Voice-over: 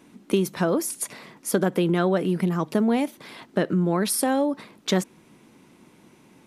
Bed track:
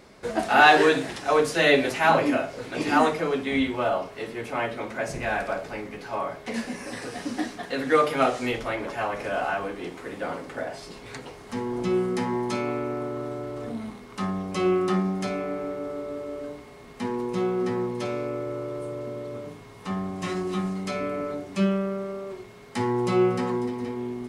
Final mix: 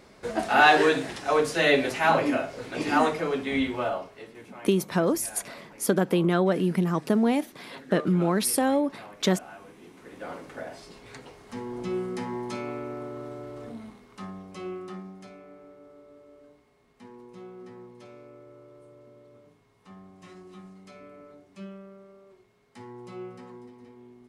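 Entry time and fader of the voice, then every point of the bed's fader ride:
4.35 s, -1.0 dB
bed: 3.78 s -2 dB
4.64 s -18 dB
9.8 s -18 dB
10.31 s -6 dB
13.59 s -6 dB
15.39 s -18.5 dB

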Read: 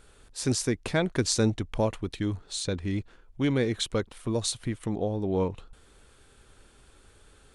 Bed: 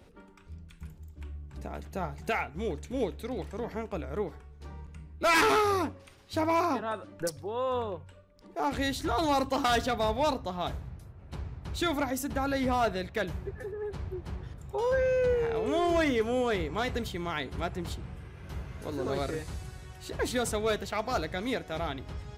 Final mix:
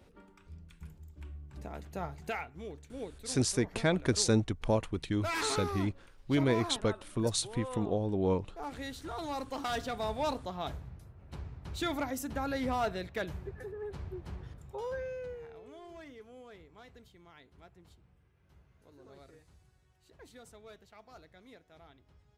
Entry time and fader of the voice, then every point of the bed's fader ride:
2.90 s, -2.5 dB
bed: 2.11 s -4 dB
2.7 s -11 dB
9.3 s -11 dB
10.36 s -4.5 dB
14.51 s -4.5 dB
15.8 s -23.5 dB

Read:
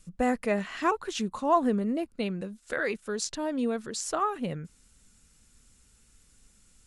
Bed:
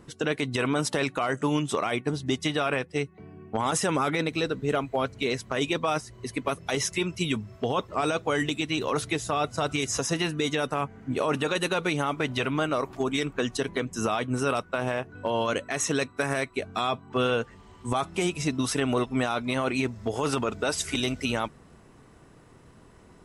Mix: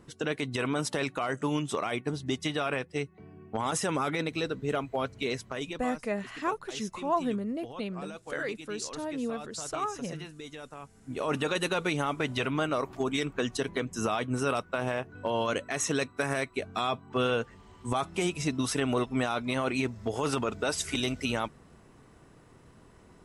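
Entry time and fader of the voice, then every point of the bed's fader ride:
5.60 s, -4.5 dB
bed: 5.4 s -4 dB
5.96 s -16.5 dB
10.83 s -16.5 dB
11.34 s -2.5 dB

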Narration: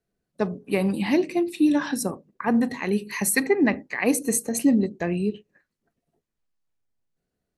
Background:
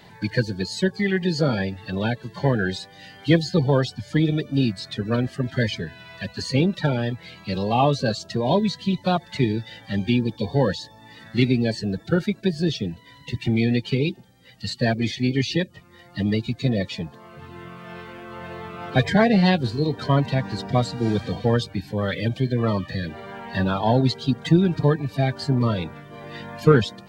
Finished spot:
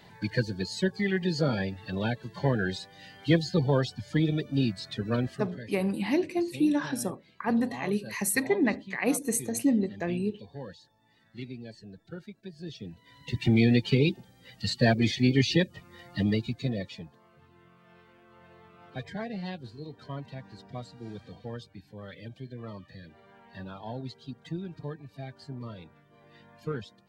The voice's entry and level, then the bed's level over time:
5.00 s, -5.0 dB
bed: 5.33 s -5.5 dB
5.6 s -21 dB
12.51 s -21 dB
13.44 s -1 dB
16.07 s -1 dB
17.55 s -19 dB

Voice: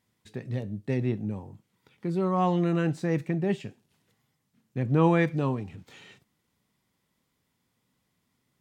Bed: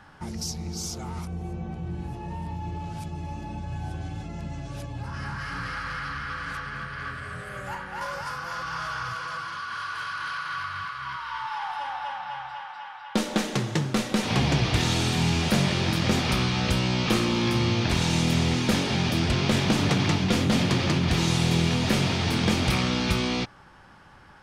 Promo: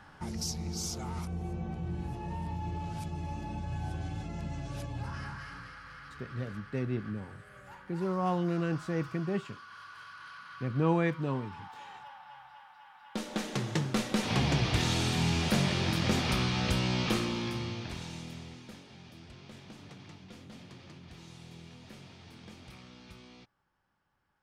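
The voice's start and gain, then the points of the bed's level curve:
5.85 s, -5.5 dB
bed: 5.05 s -3 dB
5.76 s -16 dB
12.79 s -16 dB
13.71 s -5 dB
17.01 s -5 dB
18.84 s -27 dB

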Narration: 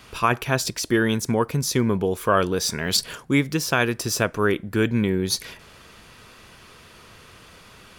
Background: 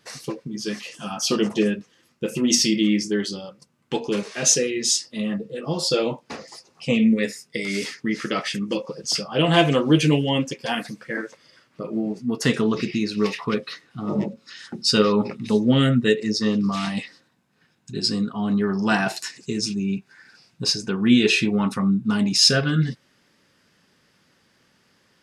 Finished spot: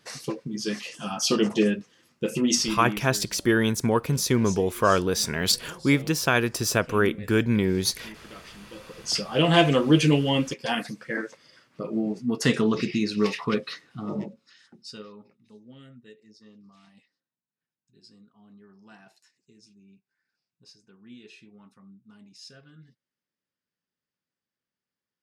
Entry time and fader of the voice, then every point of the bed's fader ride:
2.55 s, -1.0 dB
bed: 2.4 s -1 dB
3.26 s -20.5 dB
8.7 s -20.5 dB
9.16 s -1.5 dB
13.89 s -1.5 dB
15.33 s -31 dB

